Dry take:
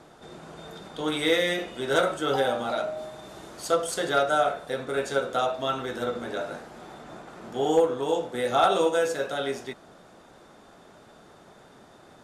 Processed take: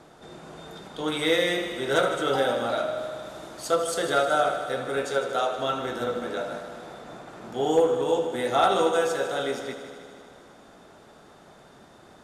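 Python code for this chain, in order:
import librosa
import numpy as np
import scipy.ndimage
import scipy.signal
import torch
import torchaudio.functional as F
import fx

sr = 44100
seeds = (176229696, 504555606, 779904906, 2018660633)

y = fx.highpass(x, sr, hz=230.0, slope=6, at=(5.05, 5.55))
y = fx.echo_heads(y, sr, ms=77, heads='first and second', feedback_pct=71, wet_db=-14)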